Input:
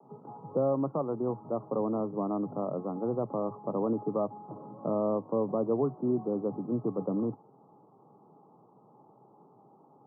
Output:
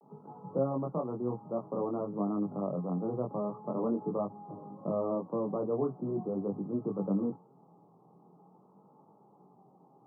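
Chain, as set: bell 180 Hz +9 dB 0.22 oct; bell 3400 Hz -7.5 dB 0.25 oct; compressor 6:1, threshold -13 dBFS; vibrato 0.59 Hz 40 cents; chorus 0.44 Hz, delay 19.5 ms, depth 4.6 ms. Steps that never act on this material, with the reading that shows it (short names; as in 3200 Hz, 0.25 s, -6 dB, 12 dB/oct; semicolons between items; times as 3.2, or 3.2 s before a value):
bell 3400 Hz: input band ends at 1300 Hz; compressor, threshold -13 dBFS: input peak -16.0 dBFS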